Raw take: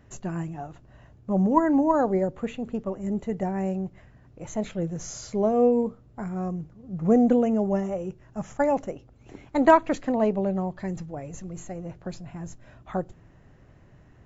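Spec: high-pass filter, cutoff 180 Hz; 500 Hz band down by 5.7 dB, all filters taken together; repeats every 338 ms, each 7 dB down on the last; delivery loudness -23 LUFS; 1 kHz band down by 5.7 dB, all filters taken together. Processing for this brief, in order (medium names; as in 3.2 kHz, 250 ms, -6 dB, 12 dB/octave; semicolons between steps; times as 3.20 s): high-pass 180 Hz; peaking EQ 500 Hz -5.5 dB; peaking EQ 1 kHz -5 dB; feedback delay 338 ms, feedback 45%, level -7 dB; trim +6 dB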